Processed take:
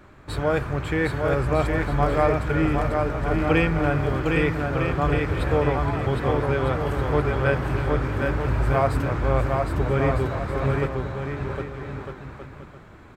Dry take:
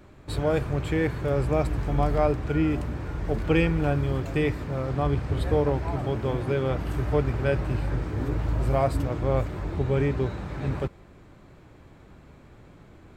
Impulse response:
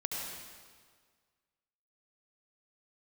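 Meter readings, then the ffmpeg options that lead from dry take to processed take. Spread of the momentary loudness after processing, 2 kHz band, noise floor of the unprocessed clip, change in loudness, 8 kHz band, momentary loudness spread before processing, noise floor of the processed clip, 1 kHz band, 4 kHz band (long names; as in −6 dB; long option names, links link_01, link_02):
8 LU, +8.0 dB, −51 dBFS, +3.0 dB, can't be measured, 6 LU, −46 dBFS, +6.5 dB, +3.5 dB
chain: -af "equalizer=frequency=1400:width_type=o:width=1.4:gain=7.5,aecho=1:1:760|1254|1575|1784|1919:0.631|0.398|0.251|0.158|0.1"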